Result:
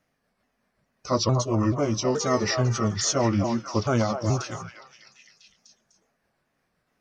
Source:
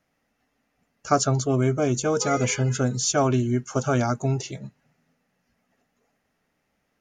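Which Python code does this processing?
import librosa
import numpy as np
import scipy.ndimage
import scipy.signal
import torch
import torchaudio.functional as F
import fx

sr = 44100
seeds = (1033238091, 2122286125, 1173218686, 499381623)

y = fx.pitch_ramps(x, sr, semitones=-4.0, every_ms=430)
y = fx.echo_stepped(y, sr, ms=250, hz=810.0, octaves=0.7, feedback_pct=70, wet_db=-3)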